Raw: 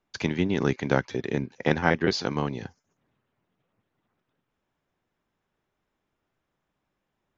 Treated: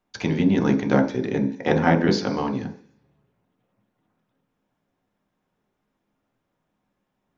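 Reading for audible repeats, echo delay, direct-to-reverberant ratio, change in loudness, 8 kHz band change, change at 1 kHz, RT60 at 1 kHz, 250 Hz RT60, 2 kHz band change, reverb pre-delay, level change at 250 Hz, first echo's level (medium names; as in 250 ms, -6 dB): no echo, no echo, 2.5 dB, +4.5 dB, no reading, +4.5 dB, 0.50 s, 0.50 s, +0.5 dB, 3 ms, +7.0 dB, no echo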